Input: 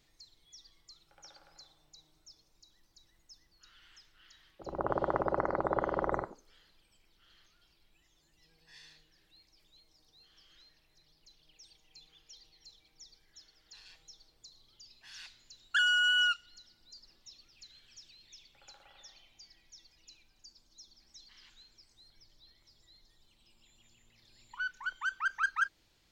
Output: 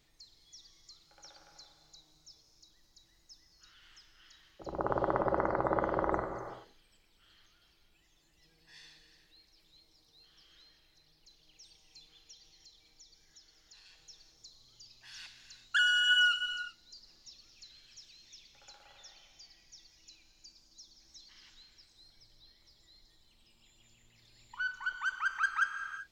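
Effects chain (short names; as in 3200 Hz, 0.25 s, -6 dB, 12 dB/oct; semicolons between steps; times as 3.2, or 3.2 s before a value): 12.32–13.99 compressor, threshold -55 dBFS, peak gain reduction 6 dB; non-linear reverb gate 0.41 s flat, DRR 6.5 dB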